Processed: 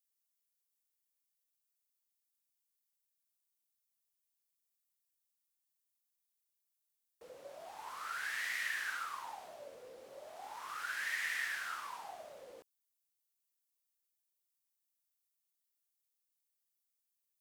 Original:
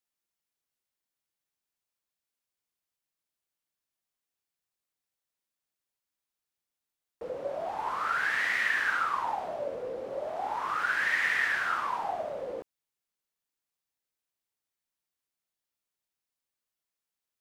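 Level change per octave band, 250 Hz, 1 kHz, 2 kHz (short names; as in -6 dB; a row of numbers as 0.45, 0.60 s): -18.5, -14.0, -10.5 dB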